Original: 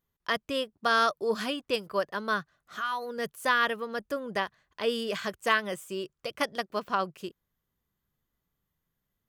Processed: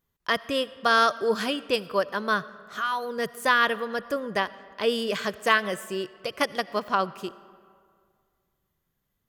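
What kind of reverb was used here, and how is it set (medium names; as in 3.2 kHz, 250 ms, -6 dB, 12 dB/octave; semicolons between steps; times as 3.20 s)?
algorithmic reverb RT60 2.1 s, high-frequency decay 0.6×, pre-delay 40 ms, DRR 18 dB; trim +4 dB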